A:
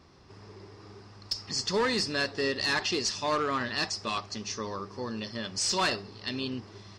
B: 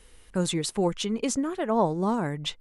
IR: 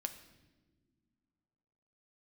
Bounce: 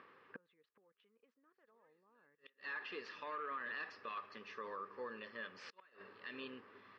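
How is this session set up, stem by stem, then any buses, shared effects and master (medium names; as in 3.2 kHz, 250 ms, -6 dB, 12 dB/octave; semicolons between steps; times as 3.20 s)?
-13.5 dB, 0.00 s, send -7.5 dB, upward compressor, threshold -43 dBFS; auto duck -16 dB, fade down 0.75 s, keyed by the second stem
-4.0 dB, 0.00 s, no send, level held to a coarse grid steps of 16 dB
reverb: on, pre-delay 6 ms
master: inverted gate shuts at -31 dBFS, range -35 dB; cabinet simulation 330–3000 Hz, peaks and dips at 340 Hz -4 dB, 480 Hz +7 dB, 710 Hz -7 dB, 1.2 kHz +8 dB, 1.7 kHz +9 dB, 2.5 kHz +3 dB; peak limiter -36 dBFS, peak gain reduction 11 dB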